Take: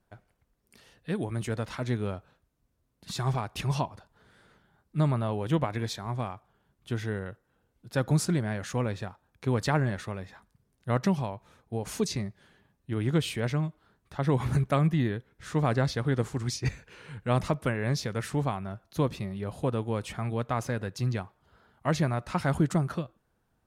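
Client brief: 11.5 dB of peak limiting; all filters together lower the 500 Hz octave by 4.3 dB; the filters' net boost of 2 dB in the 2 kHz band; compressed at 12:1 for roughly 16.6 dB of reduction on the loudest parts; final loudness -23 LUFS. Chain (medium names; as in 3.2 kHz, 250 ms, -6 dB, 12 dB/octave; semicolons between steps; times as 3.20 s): peaking EQ 500 Hz -5.5 dB; peaking EQ 2 kHz +3 dB; compression 12:1, threshold -38 dBFS; trim +24 dB; peak limiter -13.5 dBFS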